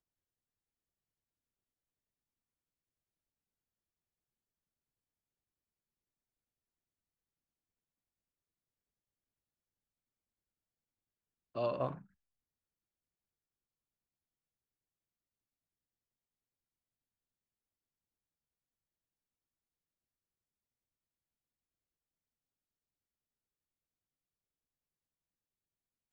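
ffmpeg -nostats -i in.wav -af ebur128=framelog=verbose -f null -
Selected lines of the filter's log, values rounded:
Integrated loudness:
  I:         -38.2 LUFS
  Threshold: -49.2 LUFS
Loudness range:
  LRA:         4.6 LU
  Threshold: -65.0 LUFS
  LRA low:   -49.1 LUFS
  LRA high:  -44.5 LUFS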